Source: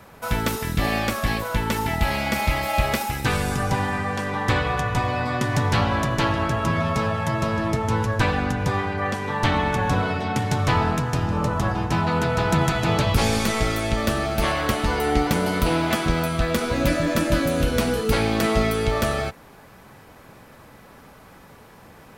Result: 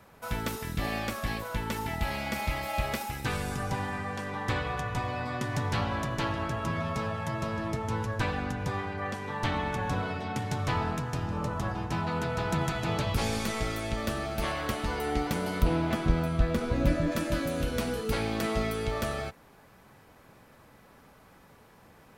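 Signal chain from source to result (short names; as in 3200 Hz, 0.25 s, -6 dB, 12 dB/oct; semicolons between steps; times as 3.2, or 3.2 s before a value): 15.62–17.12 tilt -2 dB/oct; gain -9 dB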